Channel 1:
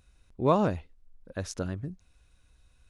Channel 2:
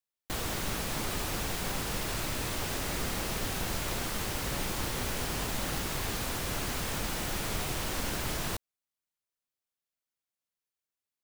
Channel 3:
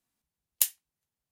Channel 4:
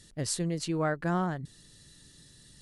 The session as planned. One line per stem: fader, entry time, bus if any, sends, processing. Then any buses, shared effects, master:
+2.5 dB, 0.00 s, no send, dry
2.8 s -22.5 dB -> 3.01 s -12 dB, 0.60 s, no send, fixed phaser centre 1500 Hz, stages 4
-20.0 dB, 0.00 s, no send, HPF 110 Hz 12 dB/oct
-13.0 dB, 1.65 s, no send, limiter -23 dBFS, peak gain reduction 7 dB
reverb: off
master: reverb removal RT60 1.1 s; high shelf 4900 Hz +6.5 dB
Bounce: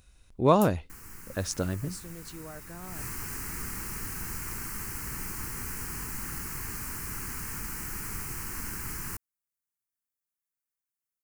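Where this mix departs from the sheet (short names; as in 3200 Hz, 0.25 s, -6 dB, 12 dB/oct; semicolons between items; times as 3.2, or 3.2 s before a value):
stem 2 -22.5 dB -> -14.0 dB; master: missing reverb removal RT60 1.1 s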